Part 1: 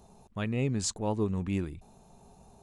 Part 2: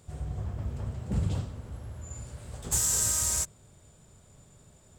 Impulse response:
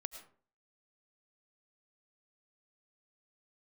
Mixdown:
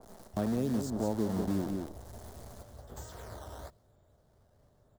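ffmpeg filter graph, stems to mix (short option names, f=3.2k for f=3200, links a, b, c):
-filter_complex "[0:a]equalizer=f=220:w=0.95:g=9,acrusher=bits=6:dc=4:mix=0:aa=0.000001,volume=2dB,asplit=2[a][b];[b]volume=-8.5dB[c];[1:a]lowpass=3.1k,acrusher=samples=11:mix=1:aa=0.000001:lfo=1:lforange=17.6:lforate=1,adelay=250,volume=-8dB[d];[c]aecho=0:1:181:1[e];[a][d][e]amix=inputs=3:normalize=0,equalizer=f=160:t=o:w=0.67:g=-6,equalizer=f=630:t=o:w=0.67:g=6,equalizer=f=2.5k:t=o:w=0.67:g=-12,acrossover=split=140|1000[f][g][h];[f]acompressor=threshold=-44dB:ratio=4[i];[g]acompressor=threshold=-30dB:ratio=4[j];[h]acompressor=threshold=-53dB:ratio=4[k];[i][j][k]amix=inputs=3:normalize=0,adynamicequalizer=threshold=0.00112:dfrequency=1700:dqfactor=0.7:tfrequency=1700:tqfactor=0.7:attack=5:release=100:ratio=0.375:range=2:mode=boostabove:tftype=highshelf"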